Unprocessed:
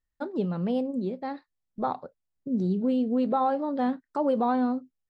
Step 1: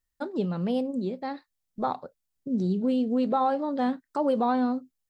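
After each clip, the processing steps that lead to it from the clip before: treble shelf 3.6 kHz +8.5 dB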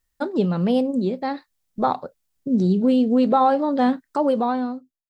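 fade out at the end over 1.10 s; trim +7.5 dB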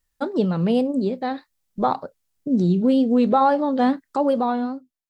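wow and flutter 88 cents

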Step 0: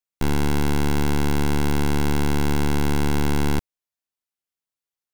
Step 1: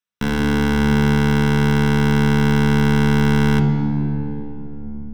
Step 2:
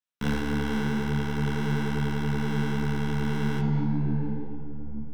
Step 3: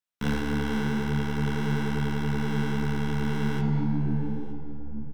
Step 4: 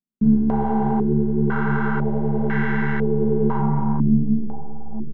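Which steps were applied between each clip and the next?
reverberation RT60 3.4 s, pre-delay 3 ms, DRR 2 dB; trim -5.5 dB
peak limiter -12.5 dBFS, peak gain reduction 7 dB; detune thickener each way 40 cents; trim -2 dB
delay 918 ms -22 dB
comb 5.1 ms, depth 83%; in parallel at -5 dB: hard clipper -28 dBFS, distortion -7 dB; on the sum: step-sequenced low-pass 2 Hz 260–1800 Hz

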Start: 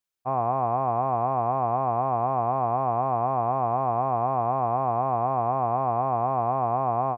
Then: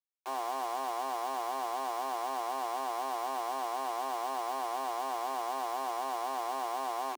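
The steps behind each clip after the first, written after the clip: bit crusher 5-bit; rippled Chebyshev high-pass 260 Hz, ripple 6 dB; trim -8 dB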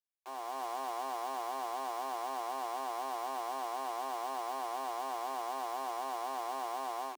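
level rider gain up to 5 dB; trim -8 dB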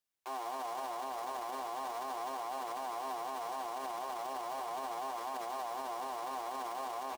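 frequency-shifting echo 152 ms, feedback 55%, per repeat -100 Hz, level -16.5 dB; flange 0.37 Hz, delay 8 ms, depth 9 ms, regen -43%; peak limiter -39.5 dBFS, peak gain reduction 11 dB; trim +9 dB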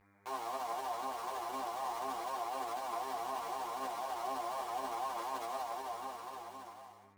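fade out at the end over 1.75 s; mains buzz 100 Hz, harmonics 24, -68 dBFS -3 dB/octave; three-phase chorus; trim +3.5 dB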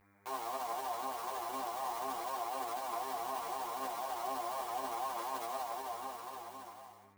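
treble shelf 12 kHz +11 dB

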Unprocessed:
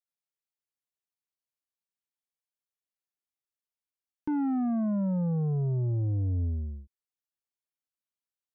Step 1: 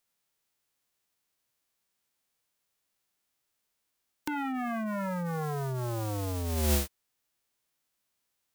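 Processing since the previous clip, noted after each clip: formants flattened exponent 0.3; compressor with a negative ratio -37 dBFS, ratio -1; trim +5.5 dB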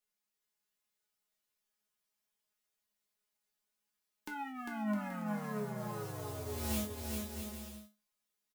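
feedback comb 210 Hz, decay 0.26 s, harmonics all, mix 90%; bouncing-ball echo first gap 400 ms, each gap 0.65×, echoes 5; trim +2.5 dB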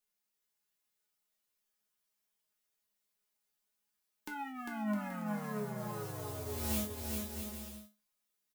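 treble shelf 9.9 kHz +4 dB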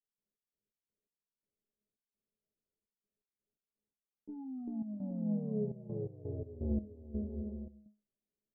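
steep low-pass 530 Hz 36 dB/octave; trance gate ".x.x.x..xxx.xxxx" 84 bpm -12 dB; trim +4.5 dB

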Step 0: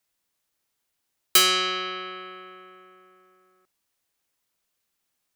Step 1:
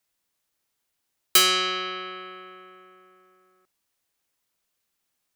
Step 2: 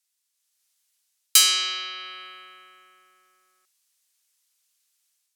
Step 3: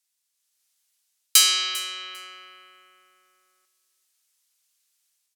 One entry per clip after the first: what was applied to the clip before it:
no audible change
level rider gain up to 6.5 dB; band-pass filter 7.9 kHz, Q 0.67; trim +3.5 dB
feedback delay 398 ms, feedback 17%, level -17 dB

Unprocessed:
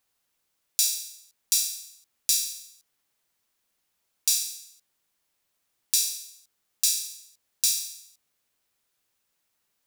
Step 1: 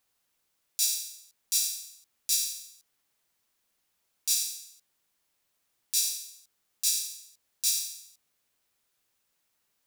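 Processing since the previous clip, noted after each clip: peak limiter -12.5 dBFS, peak gain reduction 10 dB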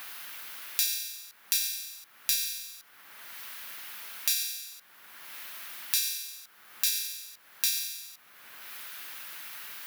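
FFT filter 490 Hz 0 dB, 900 Hz +6 dB, 1.5 kHz +12 dB, 7.9 kHz -11 dB, 12 kHz -1 dB; three bands compressed up and down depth 100%; trim +5.5 dB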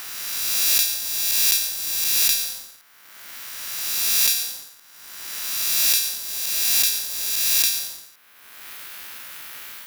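reverse spectral sustain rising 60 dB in 2.63 s; waveshaping leveller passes 2; trim -2 dB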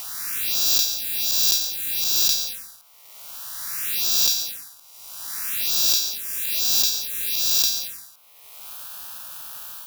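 touch-sensitive phaser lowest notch 240 Hz, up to 2.1 kHz, full sweep at -18.5 dBFS; trim +2 dB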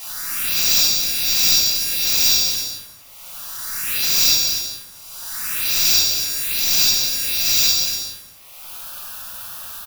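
rattle on loud lows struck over -51 dBFS, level -22 dBFS; delay 241 ms -8 dB; reverberation RT60 0.80 s, pre-delay 4 ms, DRR -9.5 dB; trim -5 dB

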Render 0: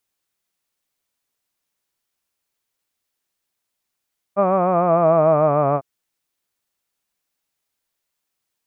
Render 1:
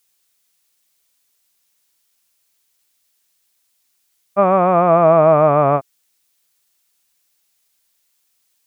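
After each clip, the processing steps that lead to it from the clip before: treble shelf 2.2 kHz +11.5 dB; trim +3 dB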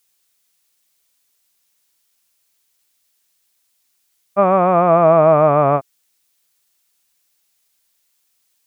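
no audible change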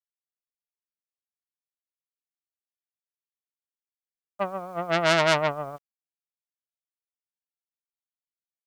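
gate -9 dBFS, range -56 dB; word length cut 10-bit, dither none; transformer saturation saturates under 3 kHz; trim +2 dB

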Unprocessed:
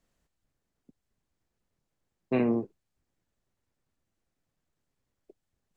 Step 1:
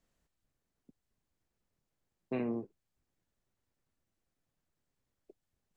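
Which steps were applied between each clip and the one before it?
compression 1.5:1, threshold -39 dBFS, peak gain reduction 6.5 dB; trim -3 dB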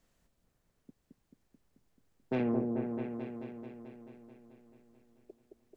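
saturation -30.5 dBFS, distortion -16 dB; delay with an opening low-pass 218 ms, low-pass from 750 Hz, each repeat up 1 oct, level -3 dB; trim +6 dB

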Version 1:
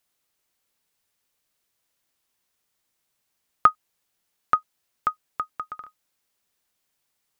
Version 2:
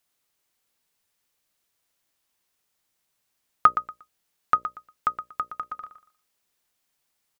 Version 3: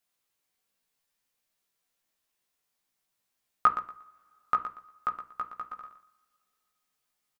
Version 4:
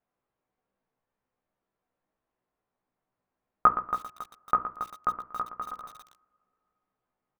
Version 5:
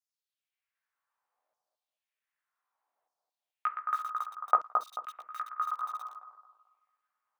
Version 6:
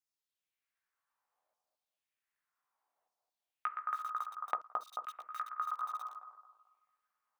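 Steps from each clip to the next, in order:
hum notches 60/120/180/240/300/360/420/480/540/600 Hz; feedback delay 118 ms, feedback 22%, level -11 dB
doubling 16 ms -4.5 dB; on a send at -8.5 dB: reverberation, pre-delay 3 ms; on the sum: trim -6.5 dB
low-pass 1 kHz 12 dB/octave; bit-crushed delay 276 ms, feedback 35%, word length 8-bit, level -10 dB; trim +7.5 dB
LFO high-pass saw down 0.65 Hz 590–5800 Hz; bucket-brigade echo 219 ms, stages 2048, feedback 35%, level -4 dB; trim -2.5 dB
compression 6:1, threshold -31 dBFS, peak gain reduction 12 dB; trim -1.5 dB

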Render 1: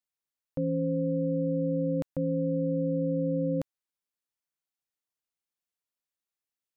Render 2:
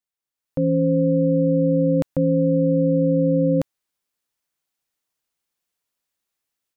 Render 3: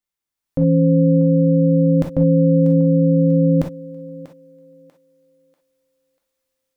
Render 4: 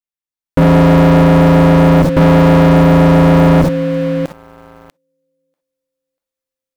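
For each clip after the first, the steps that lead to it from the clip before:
level rider gain up to 10 dB
bass shelf 230 Hz +6.5 dB; thinning echo 641 ms, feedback 35%, high-pass 410 Hz, level -13 dB; gated-style reverb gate 80 ms flat, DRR 0.5 dB
waveshaping leveller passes 5

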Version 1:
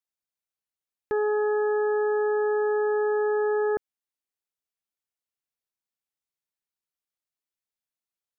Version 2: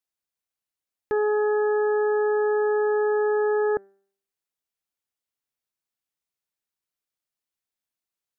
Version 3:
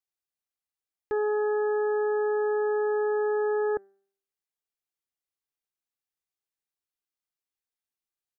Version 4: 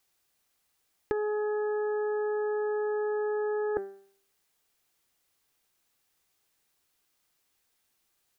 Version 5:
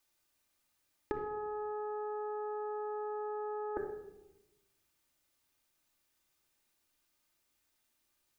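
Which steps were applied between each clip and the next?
de-hum 196.4 Hz, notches 37; trim +2 dB
comb 2.5 ms, depth 32%; trim -6 dB
compressor with a negative ratio -33 dBFS, ratio -0.5; trim +7 dB
simulated room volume 3800 m³, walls furnished, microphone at 2.6 m; trim -5 dB

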